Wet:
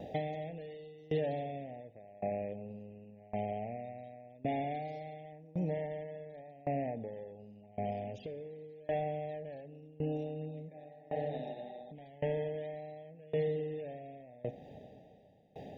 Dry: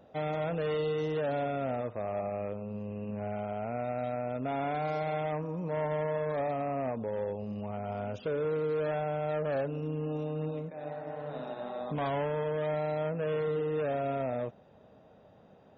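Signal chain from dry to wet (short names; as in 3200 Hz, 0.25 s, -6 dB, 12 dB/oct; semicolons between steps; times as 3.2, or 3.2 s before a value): elliptic band-stop 810–1800 Hz, stop band 40 dB; compressor 6:1, threshold -45 dBFS, peak gain reduction 14.5 dB; reverb RT60 1.8 s, pre-delay 7 ms, DRR 14 dB; dB-ramp tremolo decaying 0.9 Hz, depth 25 dB; gain +14 dB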